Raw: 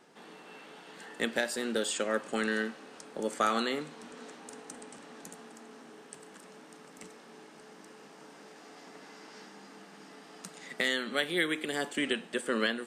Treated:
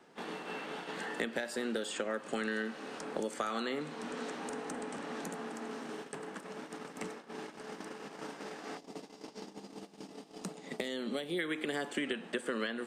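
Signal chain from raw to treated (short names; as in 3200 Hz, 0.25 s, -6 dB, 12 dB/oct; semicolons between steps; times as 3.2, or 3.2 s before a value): high shelf 4500 Hz -6.5 dB; compressor 4:1, threshold -33 dBFS, peak gain reduction 9 dB; 8.77–11.39 bell 1600 Hz -13.5 dB 1.3 oct; gate -51 dBFS, range -23 dB; three-band squash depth 70%; gain +2 dB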